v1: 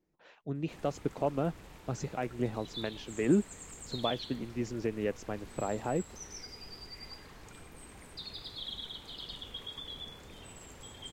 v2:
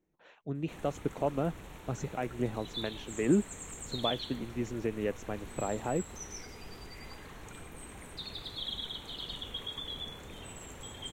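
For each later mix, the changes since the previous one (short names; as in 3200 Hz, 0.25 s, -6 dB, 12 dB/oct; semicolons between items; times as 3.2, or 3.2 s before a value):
background +4.0 dB; master: add bell 4900 Hz -14.5 dB 0.21 oct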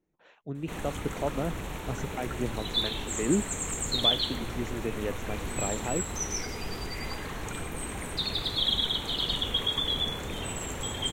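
background +11.5 dB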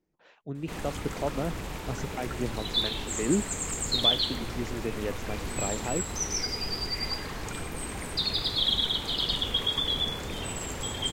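master: add bell 4900 Hz +14.5 dB 0.21 oct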